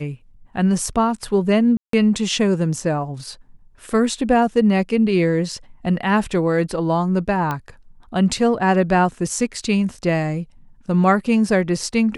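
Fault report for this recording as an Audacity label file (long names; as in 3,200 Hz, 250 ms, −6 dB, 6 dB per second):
1.770000	1.930000	drop-out 163 ms
7.510000	7.510000	click −11 dBFS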